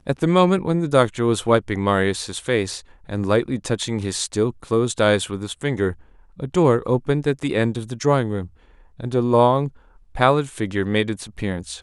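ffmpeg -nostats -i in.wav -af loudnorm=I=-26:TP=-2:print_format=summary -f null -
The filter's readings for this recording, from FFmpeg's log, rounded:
Input Integrated:    -20.9 LUFS
Input True Peak:      -1.9 dBTP
Input LRA:             1.3 LU
Input Threshold:     -31.3 LUFS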